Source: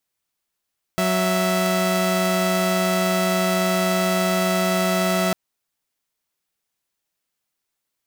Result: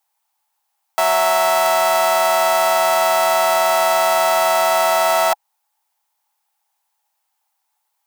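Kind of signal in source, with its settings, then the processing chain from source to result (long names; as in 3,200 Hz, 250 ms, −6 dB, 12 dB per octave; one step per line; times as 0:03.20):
held notes F#3/E5 saw, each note −18.5 dBFS 4.35 s
high-shelf EQ 8,500 Hz +6 dB
in parallel at −9.5 dB: soft clipping −16 dBFS
on the sum: high-pass with resonance 840 Hz, resonance Q 9.6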